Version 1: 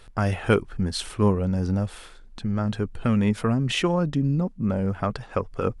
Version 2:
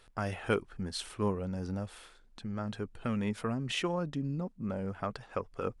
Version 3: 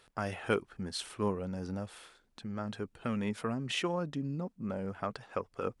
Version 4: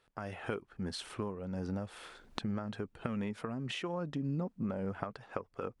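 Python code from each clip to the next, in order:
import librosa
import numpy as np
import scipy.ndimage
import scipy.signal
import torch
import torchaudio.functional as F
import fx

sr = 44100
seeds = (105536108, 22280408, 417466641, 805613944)

y1 = fx.low_shelf(x, sr, hz=200.0, db=-7.0)
y1 = F.gain(torch.from_numpy(y1), -8.0).numpy()
y2 = fx.highpass(y1, sr, hz=120.0, slope=6)
y3 = fx.recorder_agc(y2, sr, target_db=-19.5, rise_db_per_s=34.0, max_gain_db=30)
y3 = fx.high_shelf(y3, sr, hz=4000.0, db=-8.0)
y3 = F.gain(torch.from_numpy(y3), -8.5).numpy()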